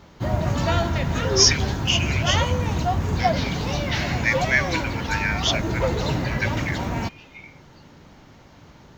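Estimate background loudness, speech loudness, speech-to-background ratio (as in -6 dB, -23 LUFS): -24.5 LUFS, -24.0 LUFS, 0.5 dB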